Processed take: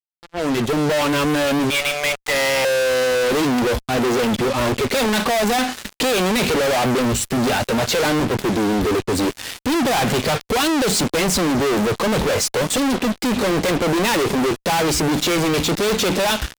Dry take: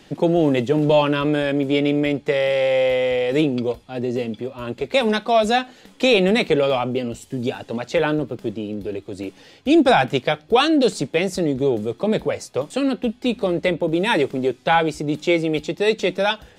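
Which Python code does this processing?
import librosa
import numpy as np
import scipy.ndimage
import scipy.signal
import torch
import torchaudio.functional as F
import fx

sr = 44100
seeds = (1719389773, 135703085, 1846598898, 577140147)

y = fx.fade_in_head(x, sr, length_s=3.15)
y = fx.highpass(y, sr, hz=730.0, slope=24, at=(1.7, 2.65))
y = fx.noise_reduce_blind(y, sr, reduce_db=15)
y = fx.fuzz(y, sr, gain_db=46.0, gate_db=-46.0)
y = y * 10.0 ** (-4.0 / 20.0)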